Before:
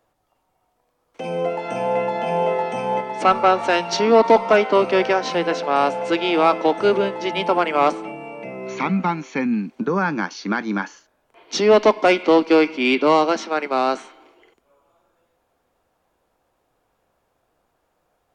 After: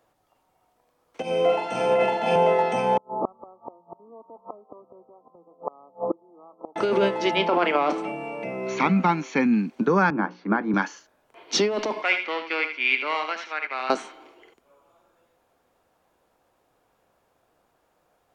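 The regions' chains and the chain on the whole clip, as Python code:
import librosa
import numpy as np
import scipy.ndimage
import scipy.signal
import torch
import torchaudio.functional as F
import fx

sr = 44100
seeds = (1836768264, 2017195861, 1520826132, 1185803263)

y = fx.chain(x, sr, fx.room_flutter(wall_m=7.6, rt60_s=0.89),
    fx.band_widen(depth_pct=100), at=(1.22, 2.36))
y = fx.chain(y, sr, fx.gate_flip(shuts_db=-14.0, range_db=-34),
    fx.brickwall_lowpass(high_hz=1300.0), at=(2.97, 6.76))
y = fx.chain(y, sr, fx.bandpass_edges(low_hz=150.0, high_hz=4500.0),
    fx.doubler(ms=34.0, db=-14.0), at=(7.35, 7.98))
y = fx.chain(y, sr, fx.lowpass(hz=1300.0, slope=12),
    fx.hum_notches(base_hz=60, count=9),
    fx.band_widen(depth_pct=40), at=(10.1, 10.74))
y = fx.chain(y, sr, fx.bandpass_q(hz=2100.0, q=2.1),
    fx.echo_single(ms=78, db=-8.5), at=(12.02, 13.9))
y = fx.low_shelf(y, sr, hz=62.0, db=-8.5)
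y = fx.over_compress(y, sr, threshold_db=-19.0, ratio=-1.0)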